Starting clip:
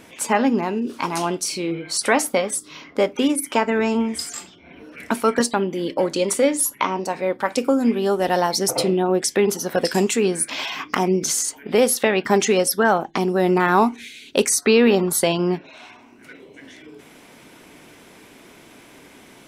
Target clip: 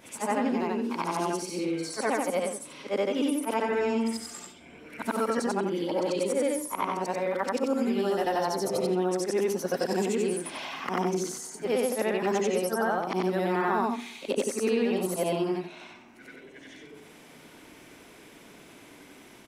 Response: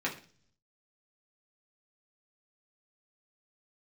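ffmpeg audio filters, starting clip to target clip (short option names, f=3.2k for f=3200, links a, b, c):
-filter_complex "[0:a]afftfilt=real='re':imag='-im':win_size=8192:overlap=0.75,acrossover=split=170|1500[a][b][c];[a]acompressor=threshold=-48dB:ratio=4[d];[b]acompressor=threshold=-24dB:ratio=4[e];[c]acompressor=threshold=-39dB:ratio=4[f];[d][e][f]amix=inputs=3:normalize=0,aecho=1:1:130|260|390|520:0.0631|0.0372|0.022|0.013"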